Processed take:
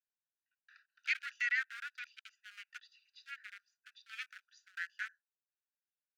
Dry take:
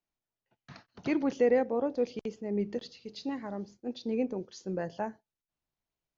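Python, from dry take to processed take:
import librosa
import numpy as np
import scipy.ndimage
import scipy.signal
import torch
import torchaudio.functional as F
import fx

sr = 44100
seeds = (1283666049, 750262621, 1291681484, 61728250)

y = fx.wiener(x, sr, points=41)
y = scipy.signal.sosfilt(scipy.signal.butter(16, 1400.0, 'highpass', fs=sr, output='sos'), y)
y = y * 10.0 ** (10.0 / 20.0)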